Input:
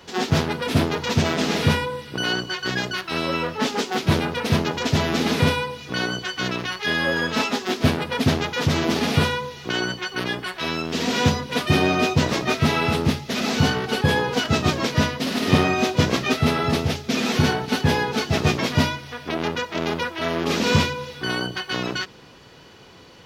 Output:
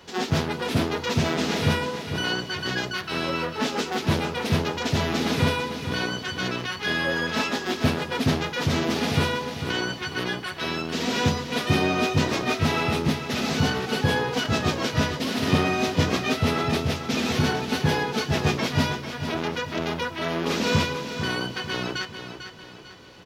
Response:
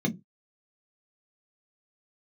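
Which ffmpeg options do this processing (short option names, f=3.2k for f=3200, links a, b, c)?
-filter_complex "[0:a]asplit=2[a][b];[b]asoftclip=type=tanh:threshold=-19.5dB,volume=-9.5dB[c];[a][c]amix=inputs=2:normalize=0,aecho=1:1:447|894|1341|1788|2235:0.335|0.141|0.0591|0.0248|0.0104,volume=-5dB"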